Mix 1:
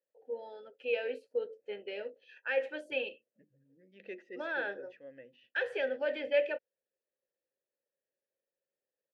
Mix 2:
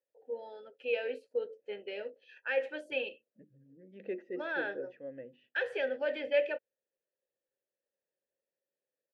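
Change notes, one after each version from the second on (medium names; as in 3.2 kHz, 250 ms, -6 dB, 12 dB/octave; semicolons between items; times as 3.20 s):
second voice: add tilt shelf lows +8.5 dB, about 1.5 kHz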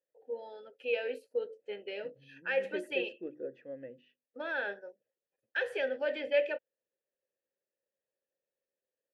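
second voice: entry -1.35 s; master: remove distance through air 58 m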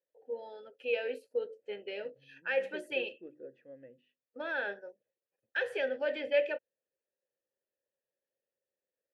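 second voice -7.5 dB; master: add peaking EQ 65 Hz +13.5 dB 0.75 oct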